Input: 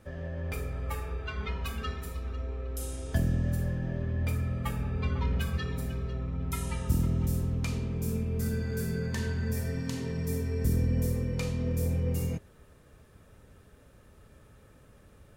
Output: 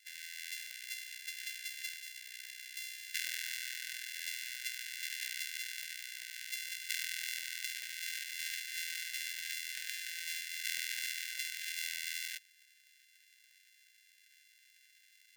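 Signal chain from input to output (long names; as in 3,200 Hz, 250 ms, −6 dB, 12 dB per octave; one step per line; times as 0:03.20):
samples sorted by size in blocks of 64 samples
linear-phase brick-wall high-pass 1,500 Hz
level +1 dB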